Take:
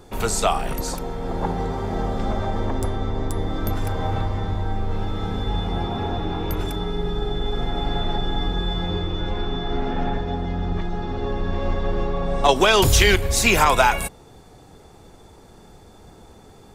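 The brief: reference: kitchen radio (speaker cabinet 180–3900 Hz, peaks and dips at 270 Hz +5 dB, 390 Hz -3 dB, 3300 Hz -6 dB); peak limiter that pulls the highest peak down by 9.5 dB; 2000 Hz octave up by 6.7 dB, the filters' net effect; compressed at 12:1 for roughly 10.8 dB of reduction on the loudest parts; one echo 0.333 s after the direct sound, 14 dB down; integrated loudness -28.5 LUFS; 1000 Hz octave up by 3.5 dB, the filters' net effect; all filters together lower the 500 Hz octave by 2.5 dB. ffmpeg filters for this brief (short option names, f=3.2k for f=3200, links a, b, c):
-af "equalizer=f=500:t=o:g=-3.5,equalizer=f=1k:t=o:g=3.5,equalizer=f=2k:t=o:g=8.5,acompressor=threshold=-18dB:ratio=12,alimiter=limit=-17dB:level=0:latency=1,highpass=180,equalizer=f=270:t=q:w=4:g=5,equalizer=f=390:t=q:w=4:g=-3,equalizer=f=3.3k:t=q:w=4:g=-6,lowpass=f=3.9k:w=0.5412,lowpass=f=3.9k:w=1.3066,aecho=1:1:333:0.2,volume=1dB"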